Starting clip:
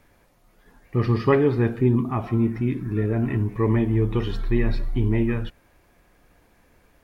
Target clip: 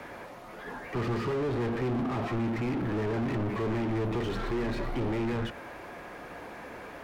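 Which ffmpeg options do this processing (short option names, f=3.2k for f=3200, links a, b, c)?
-filter_complex "[0:a]acrossover=split=150|510|1600[a][b][c][d];[a]acompressor=threshold=-24dB:ratio=4[e];[b]acompressor=threshold=-23dB:ratio=4[f];[c]acompressor=threshold=-43dB:ratio=4[g];[d]acompressor=threshold=-43dB:ratio=4[h];[e][f][g][h]amix=inputs=4:normalize=0,asplit=2[i][j];[j]highpass=f=720:p=1,volume=39dB,asoftclip=type=tanh:threshold=-16dB[k];[i][k]amix=inputs=2:normalize=0,lowpass=f=1k:p=1,volume=-6dB,volume=-7.5dB"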